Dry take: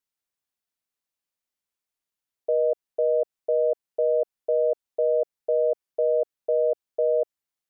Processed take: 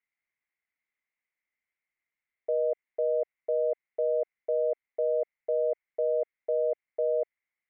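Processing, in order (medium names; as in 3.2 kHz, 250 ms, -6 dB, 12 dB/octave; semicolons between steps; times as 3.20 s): resonant low-pass 2.1 kHz, resonance Q 12; trim -5.5 dB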